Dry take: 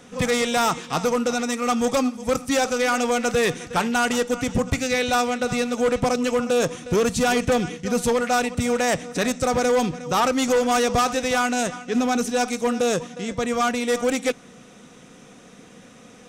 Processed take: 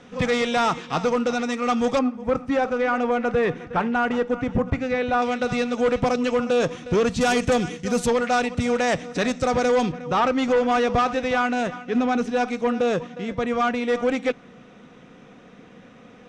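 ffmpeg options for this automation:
-af "asetnsamples=n=441:p=0,asendcmd='1.99 lowpass f 1800;5.22 lowpass f 4300;7.21 lowpass f 8800;8.06 lowpass f 4900;9.92 lowpass f 2900',lowpass=4100"

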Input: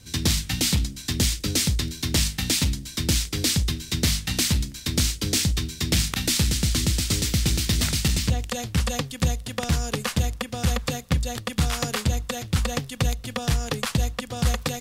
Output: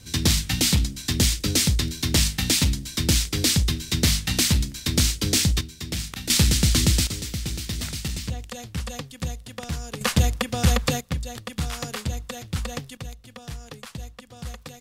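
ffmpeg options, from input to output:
-af "asetnsamples=n=441:p=0,asendcmd='5.61 volume volume -7.5dB;6.3 volume volume 3.5dB;7.07 volume volume -7dB;10.01 volume volume 4dB;11.01 volume volume -5dB;12.97 volume volume -13dB',volume=1.26"

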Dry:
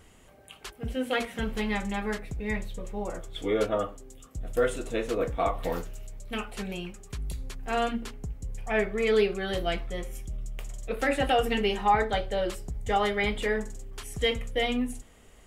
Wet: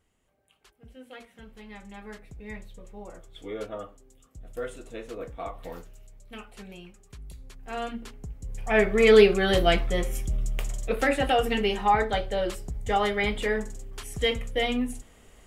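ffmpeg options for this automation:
-af "volume=2.51,afade=t=in:st=1.6:d=0.79:silence=0.398107,afade=t=in:st=7.41:d=1.02:silence=0.446684,afade=t=in:st=8.43:d=0.62:silence=0.316228,afade=t=out:st=10.59:d=0.58:silence=0.446684"

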